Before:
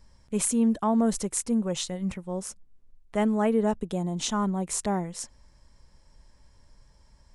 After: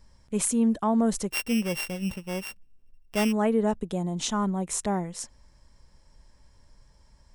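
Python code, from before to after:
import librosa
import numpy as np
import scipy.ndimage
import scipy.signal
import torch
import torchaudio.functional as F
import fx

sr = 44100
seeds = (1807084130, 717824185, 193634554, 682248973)

y = fx.sample_sort(x, sr, block=16, at=(1.3, 3.31), fade=0.02)
y = fx.notch(y, sr, hz=4600.0, q=12.0, at=(4.52, 4.96))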